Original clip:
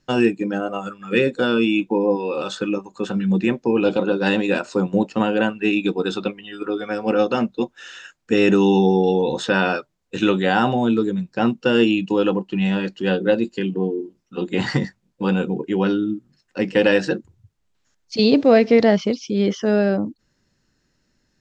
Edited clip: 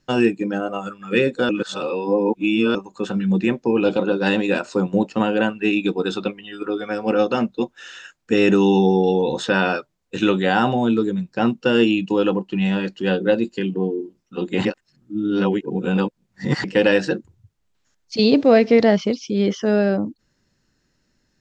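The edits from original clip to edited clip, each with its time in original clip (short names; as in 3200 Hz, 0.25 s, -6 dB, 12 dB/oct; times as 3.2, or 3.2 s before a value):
1.49–2.75 reverse
14.65–16.64 reverse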